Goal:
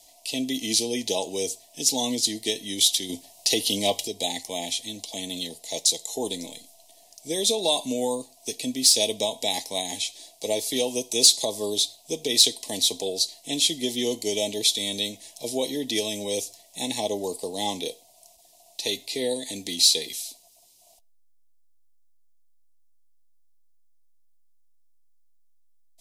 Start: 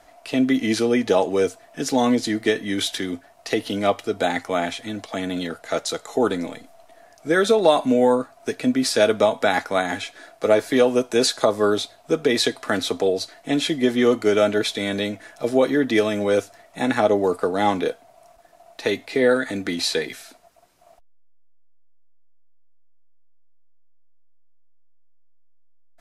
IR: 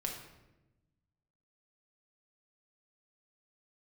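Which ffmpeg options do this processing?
-filter_complex "[0:a]asettb=1/sr,asplit=3[link_01][link_02][link_03];[link_01]atrim=end=3.094[link_04];[link_02]atrim=start=3.09:end=4.08,asetpts=PTS-STARTPTS,afade=type=in:duration=0.004:curve=qsin,afade=type=out:start_time=0.986:duration=0.004:curve=qsin,acontrast=39[link_05];[link_03]atrim=start=4.076[link_06];[link_04][link_05]acrossfade=duration=0.004:curve1=hsin:curve2=qsin[link_07];[link_07][link_06]acrossfade=duration=0.004:curve1=qsin:curve2=hsin,asuperstop=centerf=1400:order=8:qfactor=1.6,asplit=2[link_08][link_09];[1:a]atrim=start_sample=2205,afade=type=out:start_time=0.17:duration=0.01,atrim=end_sample=7938,asetrate=39690,aresample=44100[link_10];[link_09][link_10]afir=irnorm=-1:irlink=0,volume=-22dB[link_11];[link_08][link_11]amix=inputs=2:normalize=0,aexciter=amount=6.5:drive=6.4:freq=3000,volume=-10.5dB"

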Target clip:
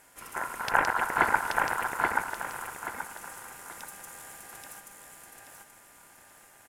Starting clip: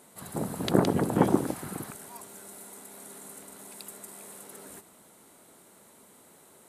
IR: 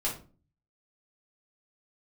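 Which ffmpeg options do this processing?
-af "aeval=exprs='if(lt(val(0),0),0.708*val(0),val(0))':channel_layout=same,aecho=1:1:830|1660|2490|3320:0.708|0.227|0.0725|0.0232,aeval=exprs='val(0)*sin(2*PI*1200*n/s)':channel_layout=same,volume=2dB"

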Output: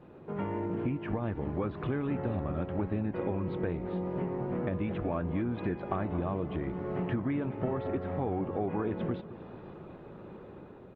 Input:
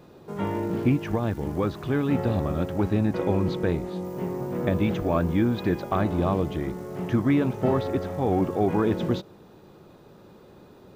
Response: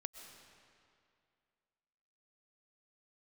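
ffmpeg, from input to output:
-filter_complex "[0:a]dynaudnorm=framelen=740:gausssize=3:maxgain=6dB,lowpass=frequency=2800:width=0.5412,lowpass=frequency=2800:width=1.3066,acompressor=threshold=-29dB:ratio=5,asplit=2[link_01][link_02];[link_02]adelay=221,lowpass=frequency=2000:poles=1,volume=-14.5dB,asplit=2[link_03][link_04];[link_04]adelay=221,lowpass=frequency=2000:poles=1,volume=0.41,asplit=2[link_05][link_06];[link_06]adelay=221,lowpass=frequency=2000:poles=1,volume=0.41,asplit=2[link_07][link_08];[link_08]adelay=221,lowpass=frequency=2000:poles=1,volume=0.41[link_09];[link_01][link_03][link_05][link_07][link_09]amix=inputs=5:normalize=0,volume=-1.5dB" -ar 48000 -c:a libopus -b:a 24k

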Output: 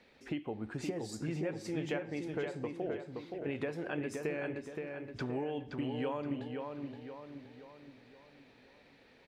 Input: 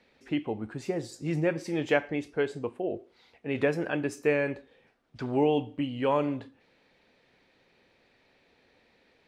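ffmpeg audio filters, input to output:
ffmpeg -i in.wav -filter_complex "[0:a]acompressor=threshold=-36dB:ratio=6,asplit=2[link_01][link_02];[link_02]adelay=522,lowpass=frequency=3400:poles=1,volume=-4.5dB,asplit=2[link_03][link_04];[link_04]adelay=522,lowpass=frequency=3400:poles=1,volume=0.48,asplit=2[link_05][link_06];[link_06]adelay=522,lowpass=frequency=3400:poles=1,volume=0.48,asplit=2[link_07][link_08];[link_08]adelay=522,lowpass=frequency=3400:poles=1,volume=0.48,asplit=2[link_09][link_10];[link_10]adelay=522,lowpass=frequency=3400:poles=1,volume=0.48,asplit=2[link_11][link_12];[link_12]adelay=522,lowpass=frequency=3400:poles=1,volume=0.48[link_13];[link_01][link_03][link_05][link_07][link_09][link_11][link_13]amix=inputs=7:normalize=0,volume=1dB" out.wav

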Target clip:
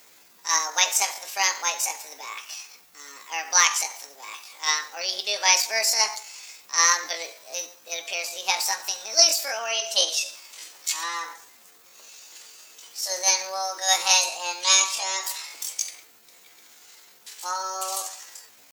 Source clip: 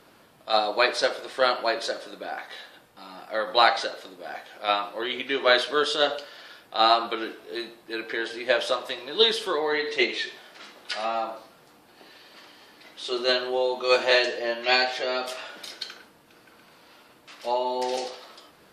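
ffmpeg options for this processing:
ffmpeg -i in.wav -af "asetrate=66075,aresample=44100,atempo=0.66742,crystalizer=i=5.5:c=0,volume=-7dB" out.wav

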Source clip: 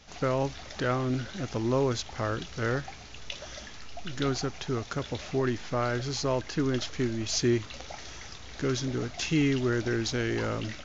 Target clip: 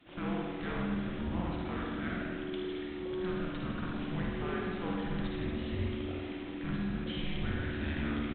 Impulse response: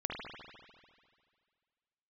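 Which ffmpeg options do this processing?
-filter_complex "[0:a]asetrate=57330,aresample=44100,acrossover=split=120|670[link_01][link_02][link_03];[link_01]acontrast=39[link_04];[link_04][link_02][link_03]amix=inputs=3:normalize=0,afreqshift=-370,aresample=8000,asoftclip=type=tanh:threshold=-28.5dB,aresample=44100,asplit=2[link_05][link_06];[link_06]adelay=1633,volume=-14dB,highshelf=frequency=4000:gain=-36.7[link_07];[link_05][link_07]amix=inputs=2:normalize=0[link_08];[1:a]atrim=start_sample=2205,asetrate=48510,aresample=44100[link_09];[link_08][link_09]afir=irnorm=-1:irlink=0,volume=-4dB"

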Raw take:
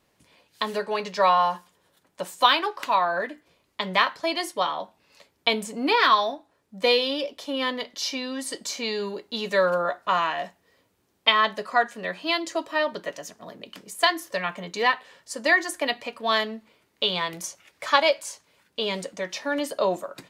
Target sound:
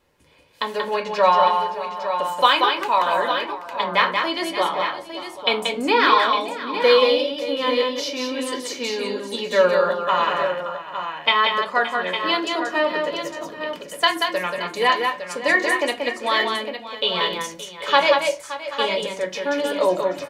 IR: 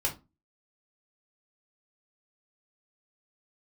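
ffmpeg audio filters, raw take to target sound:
-filter_complex "[0:a]aecho=1:1:183|571|782|857:0.596|0.188|0.119|0.376,asplit=2[link_01][link_02];[1:a]atrim=start_sample=2205,lowpass=4000[link_03];[link_02][link_03]afir=irnorm=-1:irlink=0,volume=-6dB[link_04];[link_01][link_04]amix=inputs=2:normalize=0,volume=-1dB"

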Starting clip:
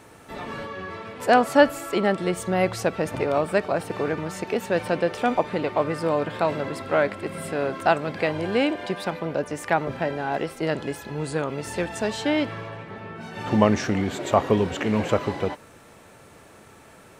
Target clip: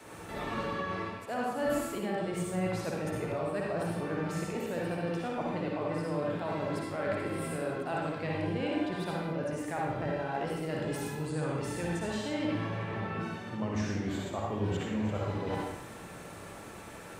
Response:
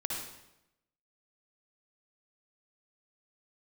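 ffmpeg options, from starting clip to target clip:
-filter_complex "[0:a]adynamicequalizer=threshold=0.0126:dfrequency=110:dqfactor=0.81:tfrequency=110:tqfactor=0.81:attack=5:release=100:ratio=0.375:range=3:mode=boostabove:tftype=bell,areverse,acompressor=threshold=-35dB:ratio=5,areverse[link_01];[1:a]atrim=start_sample=2205,afade=type=out:start_time=0.35:duration=0.01,atrim=end_sample=15876[link_02];[link_01][link_02]afir=irnorm=-1:irlink=0"

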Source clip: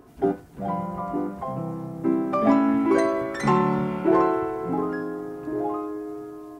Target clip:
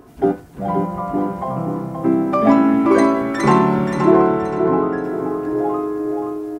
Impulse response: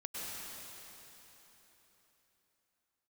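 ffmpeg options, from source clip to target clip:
-filter_complex "[0:a]asettb=1/sr,asplit=3[link_01][link_02][link_03];[link_01]atrim=end=3.974[link_04];[link_02]atrim=start=3.97:end=5.04,asetpts=PTS-STARTPTS,afade=type=in:duration=0.004:curve=qsin,afade=type=out:start_time=1.066:duration=0.004:curve=qsin,lowpass=frequency=1700:poles=1[link_05];[link_03]atrim=start=5.036[link_06];[link_04][link_05]acrossfade=duration=0.004:curve1=hsin:curve2=qsin[link_07];[link_07][link_06]acrossfade=duration=0.004:curve1=qsin:curve2=hsin,aecho=1:1:526|1052|1578|2104:0.473|0.156|0.0515|0.017,volume=6dB"

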